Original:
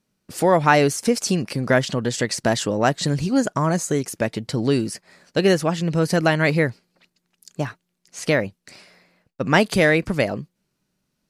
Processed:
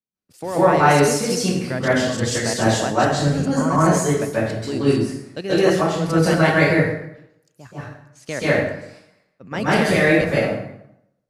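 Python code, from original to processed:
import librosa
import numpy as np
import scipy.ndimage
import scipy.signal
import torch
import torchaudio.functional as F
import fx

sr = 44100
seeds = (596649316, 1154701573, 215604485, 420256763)

y = fx.level_steps(x, sr, step_db=10)
y = fx.rev_plate(y, sr, seeds[0], rt60_s=1.0, hf_ratio=0.7, predelay_ms=120, drr_db=-9.5)
y = fx.band_widen(y, sr, depth_pct=40)
y = y * 10.0 ** (-3.5 / 20.0)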